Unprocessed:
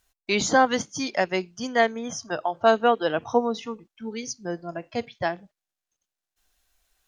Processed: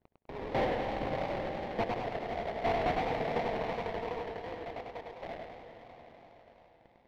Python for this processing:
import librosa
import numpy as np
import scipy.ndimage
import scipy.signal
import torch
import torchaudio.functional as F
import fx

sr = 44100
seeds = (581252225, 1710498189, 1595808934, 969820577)

p1 = scipy.signal.sosfilt(scipy.signal.cheby2(4, 40, 240.0, 'highpass', fs=sr, output='sos'), x)
p2 = fx.high_shelf(p1, sr, hz=2600.0, db=-11.5)
p3 = fx.level_steps(p2, sr, step_db=20)
p4 = fx.dmg_crackle(p3, sr, seeds[0], per_s=67.0, level_db=-47.0)
p5 = p4 + fx.echo_swell(p4, sr, ms=83, loudest=5, wet_db=-16.5, dry=0)
p6 = fx.sample_hold(p5, sr, seeds[1], rate_hz=1400.0, jitter_pct=20)
p7 = np.clip(p6, -10.0 ** (-26.0 / 20.0), 10.0 ** (-26.0 / 20.0))
p8 = fx.air_absorb(p7, sr, metres=320.0)
y = fx.echo_warbled(p8, sr, ms=101, feedback_pct=55, rate_hz=2.8, cents=109, wet_db=-3)